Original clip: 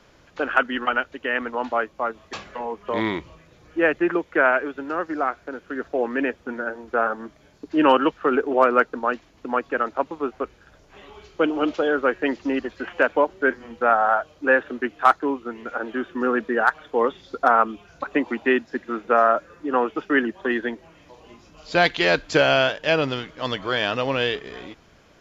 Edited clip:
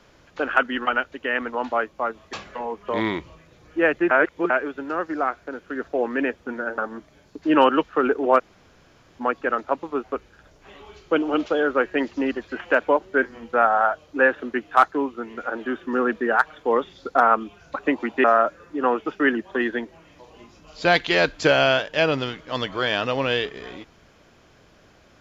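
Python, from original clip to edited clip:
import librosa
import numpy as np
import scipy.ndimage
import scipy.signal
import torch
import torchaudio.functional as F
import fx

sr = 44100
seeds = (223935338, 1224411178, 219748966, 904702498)

y = fx.edit(x, sr, fx.reverse_span(start_s=4.11, length_s=0.39),
    fx.cut(start_s=6.78, length_s=0.28),
    fx.room_tone_fill(start_s=8.67, length_s=0.81, crossfade_s=0.02),
    fx.cut(start_s=18.52, length_s=0.62), tone=tone)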